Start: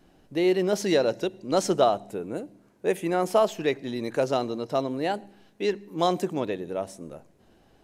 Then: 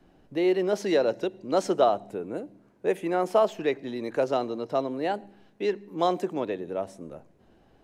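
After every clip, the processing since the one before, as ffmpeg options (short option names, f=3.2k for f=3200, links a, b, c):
-filter_complex "[0:a]highshelf=f=3.9k:g=-10,acrossover=split=230|1000|2000[a][b][c][d];[a]acompressor=threshold=-44dB:ratio=6[e];[e][b][c][d]amix=inputs=4:normalize=0"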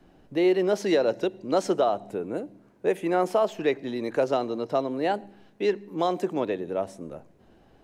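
-af "alimiter=limit=-15.5dB:level=0:latency=1:release=200,volume=2.5dB"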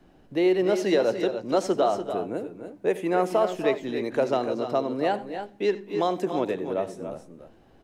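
-af "aecho=1:1:76|92|261|290|307:0.119|0.1|0.106|0.355|0.133"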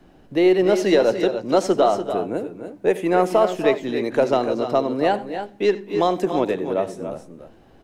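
-af "aeval=exprs='0.299*(cos(1*acos(clip(val(0)/0.299,-1,1)))-cos(1*PI/2))+0.00473*(cos(4*acos(clip(val(0)/0.299,-1,1)))-cos(4*PI/2))+0.00188*(cos(7*acos(clip(val(0)/0.299,-1,1)))-cos(7*PI/2))':c=same,volume=5.5dB"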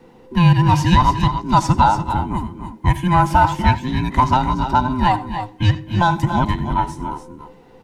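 -af "afftfilt=real='real(if(between(b,1,1008),(2*floor((b-1)/24)+1)*24-b,b),0)':imag='imag(if(between(b,1,1008),(2*floor((b-1)/24)+1)*24-b,b),0)*if(between(b,1,1008),-1,1)':win_size=2048:overlap=0.75,volume=3.5dB"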